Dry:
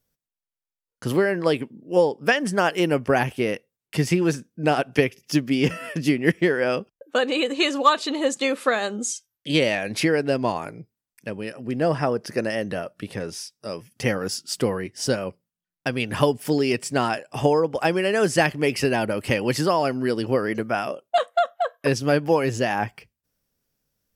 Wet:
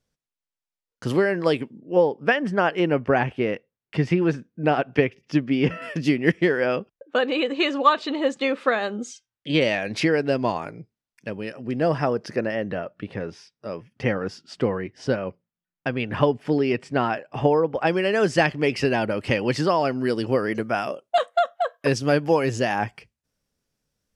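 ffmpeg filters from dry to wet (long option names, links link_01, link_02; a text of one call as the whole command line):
ffmpeg -i in.wav -af "asetnsamples=nb_out_samples=441:pad=0,asendcmd='1.79 lowpass f 2700;5.82 lowpass f 5800;6.66 lowpass f 3400;9.61 lowpass f 5600;12.36 lowpass f 2600;17.87 lowpass f 5200;19.98 lowpass f 9000',lowpass=7200" out.wav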